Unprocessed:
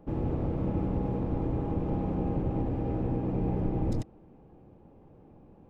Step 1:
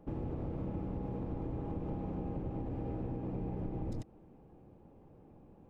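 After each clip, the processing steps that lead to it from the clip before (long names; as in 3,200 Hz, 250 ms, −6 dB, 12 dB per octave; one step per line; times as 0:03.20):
downward compressor, threshold −31 dBFS, peak gain reduction 7.5 dB
level −3.5 dB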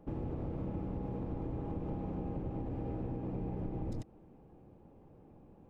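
no processing that can be heard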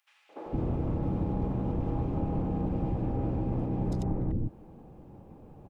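three-band delay without the direct sound highs, mids, lows 290/460 ms, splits 420/2,000 Hz
level +9 dB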